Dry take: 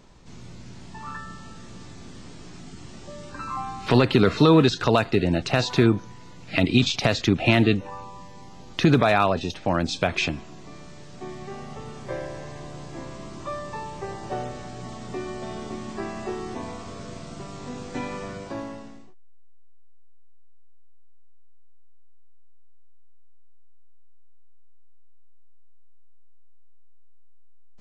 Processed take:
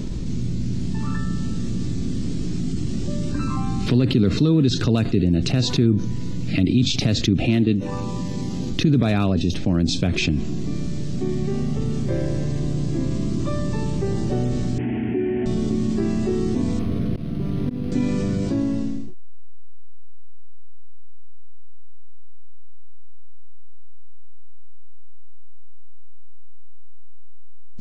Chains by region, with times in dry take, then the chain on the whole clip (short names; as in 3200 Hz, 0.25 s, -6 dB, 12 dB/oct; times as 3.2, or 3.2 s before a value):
7.47–8.71 low shelf 90 Hz -11.5 dB + transient shaper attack +1 dB, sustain -7 dB
14.78–15.46 delta modulation 16 kbps, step -34.5 dBFS + HPF 83 Hz 24 dB/oct + fixed phaser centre 790 Hz, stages 8
16.79–17.92 auto swell 0.55 s + decimation joined by straight lines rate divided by 6×
whole clip: EQ curve 270 Hz 0 dB, 880 Hz -22 dB, 4200 Hz -11 dB; fast leveller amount 70%